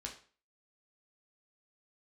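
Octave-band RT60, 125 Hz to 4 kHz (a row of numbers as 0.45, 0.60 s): 0.40, 0.40, 0.40, 0.40, 0.40, 0.35 s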